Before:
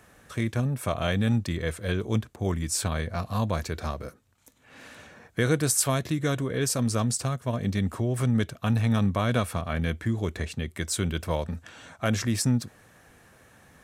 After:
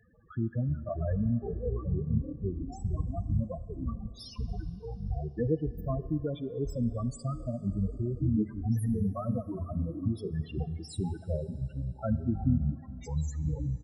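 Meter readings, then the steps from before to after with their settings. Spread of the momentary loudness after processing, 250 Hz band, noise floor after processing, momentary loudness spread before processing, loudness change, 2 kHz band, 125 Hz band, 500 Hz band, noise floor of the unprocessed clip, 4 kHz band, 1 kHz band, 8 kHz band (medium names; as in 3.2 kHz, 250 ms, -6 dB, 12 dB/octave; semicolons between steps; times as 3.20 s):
8 LU, -4.0 dB, -49 dBFS, 9 LU, -5.5 dB, under -20 dB, -3.5 dB, -6.0 dB, -58 dBFS, -18.5 dB, -11.5 dB, -23.5 dB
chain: self-modulated delay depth 0.092 ms; ever faster or slower copies 127 ms, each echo -7 st, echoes 2; loudest bins only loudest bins 8; reverb removal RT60 1.7 s; echo from a far wall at 77 m, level -27 dB; Schroeder reverb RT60 3.2 s, combs from 30 ms, DRR 15.5 dB; trim -2.5 dB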